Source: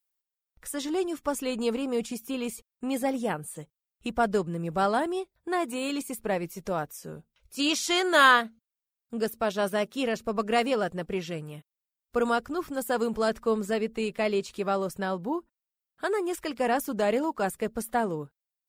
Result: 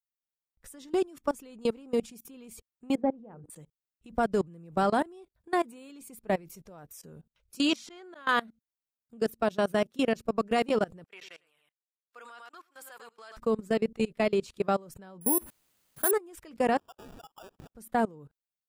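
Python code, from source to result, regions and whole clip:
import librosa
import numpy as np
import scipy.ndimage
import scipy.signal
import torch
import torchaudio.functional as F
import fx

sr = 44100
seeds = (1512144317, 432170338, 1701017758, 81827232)

y = fx.chain(x, sr, fx.lowpass(hz=1000.0, slope=12),
    fx.hum_notches(base_hz=60, count=8), at=(2.95, 3.5))
y = fx.chain(y, sr, fx.lowpass(hz=2300.0, slope=6),
    fx.auto_swell(attack_ms=290.0), at=(7.76, 8.29))
y = fx.chain(y, sr, fx.highpass(hz=1500.0, slope=12),
    fx.high_shelf(hz=4100.0, db=-9.5),
    fx.echo_single(ms=102, db=-9.0), at=(11.04, 13.37))
y = fx.chain(y, sr, fx.zero_step(step_db=-42.0),
    fx.resample_bad(factor=4, down='filtered', up='zero_stuff'), at=(15.21, 16.11))
y = fx.chain(y, sr, fx.brickwall_bandpass(low_hz=1100.0, high_hz=3300.0),
    fx.sample_hold(seeds[0], rate_hz=2100.0, jitter_pct=0), at=(16.78, 17.75))
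y = fx.low_shelf(y, sr, hz=400.0, db=6.5)
y = fx.level_steps(y, sr, step_db=24)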